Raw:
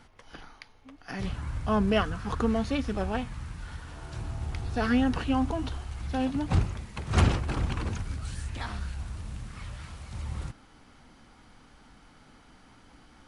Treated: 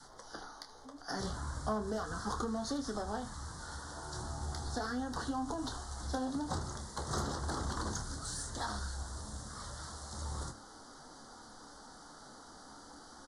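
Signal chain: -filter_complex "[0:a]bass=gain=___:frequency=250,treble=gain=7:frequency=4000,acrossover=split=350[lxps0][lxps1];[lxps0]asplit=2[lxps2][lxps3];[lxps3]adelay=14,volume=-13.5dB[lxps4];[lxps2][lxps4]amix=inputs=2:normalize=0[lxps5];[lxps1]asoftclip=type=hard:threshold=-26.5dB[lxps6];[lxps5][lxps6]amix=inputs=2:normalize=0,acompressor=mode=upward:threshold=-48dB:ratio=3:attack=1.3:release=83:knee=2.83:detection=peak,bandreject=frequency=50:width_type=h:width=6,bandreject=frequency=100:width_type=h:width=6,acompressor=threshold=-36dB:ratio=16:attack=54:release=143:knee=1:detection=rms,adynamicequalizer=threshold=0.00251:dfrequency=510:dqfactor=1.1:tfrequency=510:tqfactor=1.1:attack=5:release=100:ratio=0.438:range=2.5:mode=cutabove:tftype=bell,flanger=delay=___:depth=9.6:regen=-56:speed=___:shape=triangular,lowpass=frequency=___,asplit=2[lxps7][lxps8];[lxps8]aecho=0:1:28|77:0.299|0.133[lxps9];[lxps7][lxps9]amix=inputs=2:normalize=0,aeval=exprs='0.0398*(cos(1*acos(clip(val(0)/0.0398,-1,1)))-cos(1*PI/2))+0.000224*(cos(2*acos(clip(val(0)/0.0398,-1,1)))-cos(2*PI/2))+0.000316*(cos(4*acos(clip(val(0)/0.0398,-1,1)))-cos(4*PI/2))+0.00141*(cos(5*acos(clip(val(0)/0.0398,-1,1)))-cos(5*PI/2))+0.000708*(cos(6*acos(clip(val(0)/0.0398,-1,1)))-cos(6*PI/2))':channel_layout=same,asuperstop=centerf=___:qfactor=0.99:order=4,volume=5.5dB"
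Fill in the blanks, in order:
-12, 6.5, 0.36, 9400, 2500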